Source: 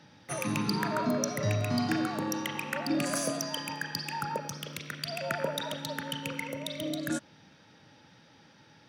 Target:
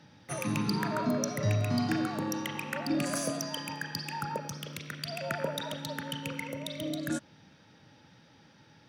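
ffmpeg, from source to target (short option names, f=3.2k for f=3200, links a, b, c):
-af "lowshelf=f=200:g=5,volume=-2dB"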